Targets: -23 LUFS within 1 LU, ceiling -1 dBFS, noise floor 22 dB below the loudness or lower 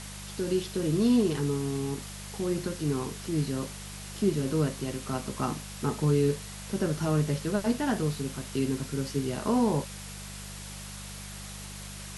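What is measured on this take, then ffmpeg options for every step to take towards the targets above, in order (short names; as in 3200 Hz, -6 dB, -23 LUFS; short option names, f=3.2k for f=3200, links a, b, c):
hum 50 Hz; harmonics up to 200 Hz; hum level -42 dBFS; noise floor -42 dBFS; noise floor target -52 dBFS; loudness -29.5 LUFS; peak -14.0 dBFS; loudness target -23.0 LUFS
-> -af "bandreject=f=50:t=h:w=4,bandreject=f=100:t=h:w=4,bandreject=f=150:t=h:w=4,bandreject=f=200:t=h:w=4"
-af "afftdn=nr=10:nf=-42"
-af "volume=6.5dB"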